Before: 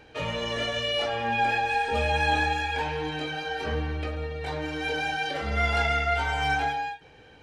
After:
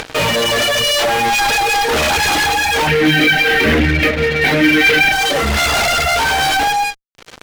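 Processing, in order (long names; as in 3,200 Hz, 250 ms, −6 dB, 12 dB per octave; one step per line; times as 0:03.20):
wavefolder on the positive side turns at −26 dBFS
reverb reduction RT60 1.3 s
upward compression, threshold −41 dBFS
low-shelf EQ 110 Hz −9 dB
fuzz pedal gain 41 dB, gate −46 dBFS
0:02.87–0:05.12: octave-band graphic EQ 125/250/1,000/2,000/8,000 Hz +4/+8/−8/+11/−8 dB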